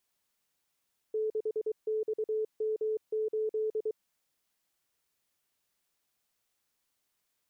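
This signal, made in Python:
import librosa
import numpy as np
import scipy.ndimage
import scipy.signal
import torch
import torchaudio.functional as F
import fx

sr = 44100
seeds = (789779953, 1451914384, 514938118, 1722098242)

y = fx.morse(sr, text='6XM8', wpm=23, hz=434.0, level_db=-28.0)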